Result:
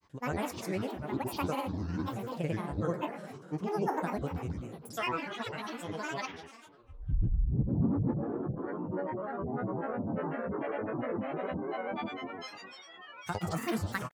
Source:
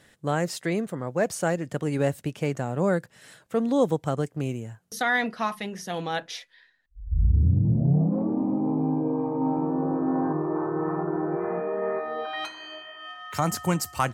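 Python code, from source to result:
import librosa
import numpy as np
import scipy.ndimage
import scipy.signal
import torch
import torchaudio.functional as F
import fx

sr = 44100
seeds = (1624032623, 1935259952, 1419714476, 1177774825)

y = fx.rev_plate(x, sr, seeds[0], rt60_s=2.0, hf_ratio=0.5, predelay_ms=0, drr_db=3.5)
y = fx.granulator(y, sr, seeds[1], grain_ms=100.0, per_s=20.0, spray_ms=100.0, spread_st=12)
y = F.gain(torch.from_numpy(y), -8.5).numpy()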